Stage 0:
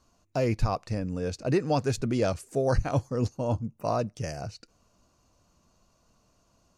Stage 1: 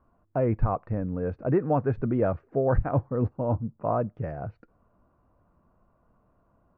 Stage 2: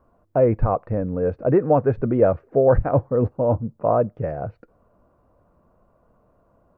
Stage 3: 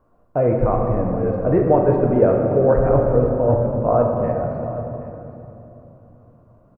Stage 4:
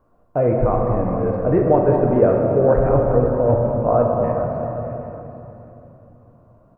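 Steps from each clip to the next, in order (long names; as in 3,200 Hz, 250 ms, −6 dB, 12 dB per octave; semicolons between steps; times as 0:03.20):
low-pass filter 1,600 Hz 24 dB per octave; level +1.5 dB
parametric band 520 Hz +7 dB 0.83 octaves; level +3.5 dB
single-tap delay 774 ms −16.5 dB; rectangular room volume 170 cubic metres, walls hard, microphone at 0.45 metres; level −1 dB
echo through a band-pass that steps 206 ms, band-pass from 800 Hz, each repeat 0.7 octaves, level −5.5 dB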